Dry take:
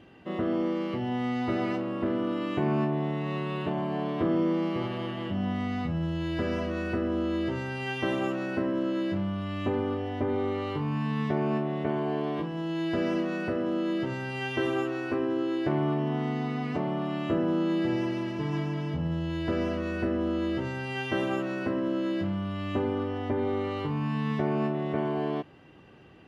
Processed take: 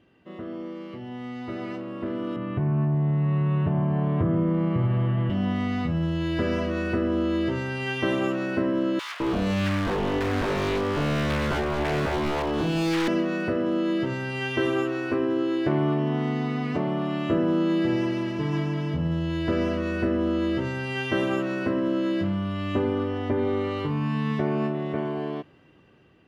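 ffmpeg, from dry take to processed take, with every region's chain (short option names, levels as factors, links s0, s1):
-filter_complex "[0:a]asettb=1/sr,asplit=3[s0][s1][s2];[s0]atrim=end=2.364[s3];[s1]atrim=start=2.36:end=5.3,asetpts=PTS-STARTPTS,afade=t=in:d=0.004:c=qsin,afade=t=out:st=2.936:d=0.004:c=qsin,lowpass=1800,lowshelf=f=190:t=q:w=1.5:g=11,acompressor=threshold=0.0631:ratio=2.5:attack=3.2:release=140:knee=1:detection=peak[s4];[s2]atrim=start=5.296[s5];[s3][s4]acrossfade=d=0.004:c1=hsin:c2=qsin[s6];[s6][s5]acrossfade=d=0.004:c1=qsin:c2=hsin,asettb=1/sr,asplit=3[s7][s8][s9];[s7]atrim=end=8.994[s10];[s8]atrim=start=8.99:end=13.08,asetpts=PTS-STARTPTS,afade=t=in:d=0.004:c=qsin,afade=t=out:st=4.086:d=0.004:c=qsin,acontrast=47,aeval=exprs='0.0668*(abs(mod(val(0)/0.0668+3,4)-2)-1)':c=same,acrossover=split=1200[s11][s12];[s11]adelay=210[s13];[s13][s12]amix=inputs=2:normalize=0,atrim=end_sample=180369[s14];[s9]atrim=start=13.076[s15];[s10][s14]acrossfade=d=0.004:c1=hsin:c2=qsin[s16];[s16][s15]acrossfade=d=0.004:c1=qsin:c2=hsin,equalizer=f=800:t=o:w=0.27:g=-5,dynaudnorm=f=710:g=7:m=3.98,volume=0.422"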